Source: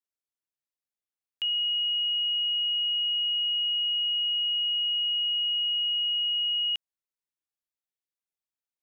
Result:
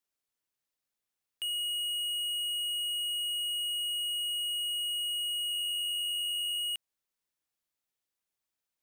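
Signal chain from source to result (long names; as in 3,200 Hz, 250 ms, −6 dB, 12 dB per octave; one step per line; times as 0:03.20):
soft clipping −38 dBFS, distortion −10 dB
0:05.50–0:06.58: steady tone 2,800 Hz −50 dBFS
level +5.5 dB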